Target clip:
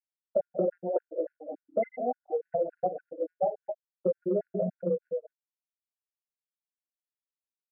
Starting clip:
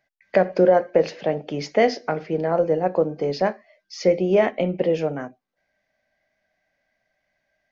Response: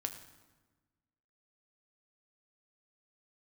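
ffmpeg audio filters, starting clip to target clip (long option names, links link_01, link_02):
-af "bandreject=frequency=440:width=12,acontrast=26,flanger=delay=15.5:depth=2.3:speed=0.97,afftfilt=real='re*gte(hypot(re,im),0.562)':imag='im*gte(hypot(re,im),0.562)':win_size=1024:overlap=0.75,crystalizer=i=1.5:c=0,adynamicequalizer=threshold=0.0224:dfrequency=2300:dqfactor=0.79:tfrequency=2300:tqfactor=0.79:attack=5:release=100:ratio=0.375:range=2:mode=cutabove:tftype=bell,aecho=1:1:47|123|199|221|237:0.2|0.158|0.106|0.316|0.15,acompressor=threshold=-19dB:ratio=12,highpass=frequency=42:width=0.5412,highpass=frequency=42:width=1.3066,equalizer=frequency=1400:width=1.8:gain=13.5,afftfilt=real='re*gt(sin(2*PI*3.5*pts/sr)*(1-2*mod(floor(b*sr/1024/1400),2)),0)':imag='im*gt(sin(2*PI*3.5*pts/sr)*(1-2*mod(floor(b*sr/1024/1400),2)),0)':win_size=1024:overlap=0.75,volume=-5dB"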